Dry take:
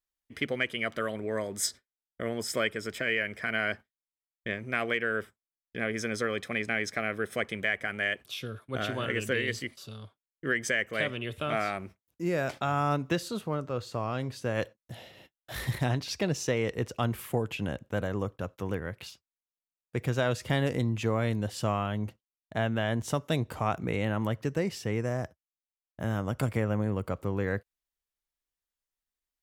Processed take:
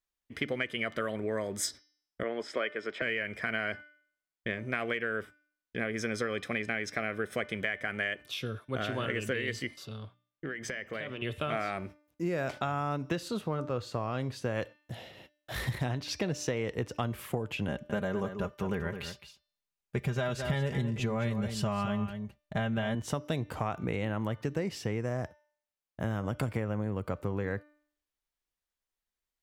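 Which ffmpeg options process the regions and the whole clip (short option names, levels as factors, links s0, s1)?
-filter_complex "[0:a]asettb=1/sr,asplit=3[s0][s1][s2];[s0]atrim=end=2.234[s3];[s1]atrim=start=2.23:end=3.02,asetpts=PTS-STARTPTS,afade=t=in:d=0.004:c=qsin,afade=t=out:st=0.786:d=0.004:c=qsin,lowpass=9500,acrossover=split=260 4100:gain=0.0794 1 0.126[s4][s5][s6];[s4][s5][s6]amix=inputs=3:normalize=0[s7];[s2]atrim=start=3.016[s8];[s3][s7]acrossfade=d=0.004:c1=hsin:c2=qsin[s9];[s9][s8]acrossfade=d=0.004:c1=qsin:c2=hsin,asettb=1/sr,asplit=3[s10][s11][s12];[s10]atrim=end=9.854[s13];[s11]atrim=start=9.85:end=11.22,asetpts=PTS-STARTPTS,afade=t=in:d=0.004:c=qsin,afade=t=out:st=1.366:d=0.004:c=qsin,equalizer=f=10000:w=0.66:g=-7.5,acompressor=threshold=0.02:ratio=12:attack=3.2:release=140:knee=1:detection=peak,bandreject=f=60:t=h:w=6,bandreject=f=120:t=h:w=6,bandreject=f=180:t=h:w=6,bandreject=f=240:t=h:w=6[s14];[s12]atrim=start=11.216[s15];[s13][s14]acrossfade=d=0.004:c1=hsin:c2=qsin[s16];[s16][s15]acrossfade=d=0.004:c1=qsin:c2=hsin,asettb=1/sr,asplit=3[s17][s18][s19];[s17]atrim=end=17.684[s20];[s18]atrim=start=17.68:end=22.95,asetpts=PTS-STARTPTS,afade=t=in:d=0.004:c=qsin,afade=t=out:st=5.266:d=0.004:c=qsin,asubboost=boost=5.5:cutoff=120,aecho=1:1:5:0.69,atrim=end_sample=232407,aecho=1:1:213:0.299,atrim=end_sample=232407[s21];[s19]atrim=start=22.946[s22];[s20][s21]acrossfade=d=0.004:c1=hsin:c2=qsin[s23];[s23][s22]acrossfade=d=0.004:c1=qsin:c2=hsin,highshelf=f=6300:g=-6,bandreject=f=297.8:t=h:w=4,bandreject=f=595.6:t=h:w=4,bandreject=f=893.4:t=h:w=4,bandreject=f=1191.2:t=h:w=4,bandreject=f=1489:t=h:w=4,bandreject=f=1786.8:t=h:w=4,bandreject=f=2084.6:t=h:w=4,bandreject=f=2382.4:t=h:w=4,bandreject=f=2680.2:t=h:w=4,bandreject=f=2978:t=h:w=4,bandreject=f=3275.8:t=h:w=4,bandreject=f=3573.6:t=h:w=4,bandreject=f=3871.4:t=h:w=4,bandreject=f=4169.2:t=h:w=4,bandreject=f=4467:t=h:w=4,bandreject=f=4764.8:t=h:w=4,bandreject=f=5062.6:t=h:w=4,bandreject=f=5360.4:t=h:w=4,bandreject=f=5658.2:t=h:w=4,bandreject=f=5956:t=h:w=4,acompressor=threshold=0.0316:ratio=6,volume=1.26"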